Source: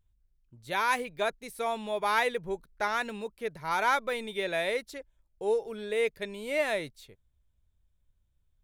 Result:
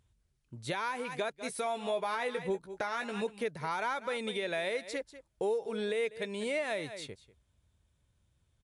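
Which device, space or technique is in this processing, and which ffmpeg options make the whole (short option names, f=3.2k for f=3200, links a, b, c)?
podcast mastering chain: -filter_complex "[0:a]asettb=1/sr,asplit=3[a][b][c];[a]atrim=end=1.434[d];[b]atrim=start=1.43:end=3.22,asetpts=PTS-STARTPTS,afade=t=in:d=0.004:c=qsin,afade=t=out:st=1.786:d=0.004:c=qsin,asplit=2[e][f];[f]adelay=16,volume=-7dB[g];[e][g]amix=inputs=2:normalize=0,atrim=end_sample=78939[h];[c]atrim=start=3.216[i];[d][h]acrossfade=d=0.004:c1=hsin:c2=qsin[j];[j][i]acrossfade=d=0.004:c1=qsin:c2=hsin,highpass=86,aecho=1:1:193:0.119,deesser=0.8,acompressor=threshold=-41dB:ratio=2.5,alimiter=level_in=8.5dB:limit=-24dB:level=0:latency=1:release=288,volume=-8.5dB,volume=9dB" -ar 24000 -c:a libmp3lame -b:a 96k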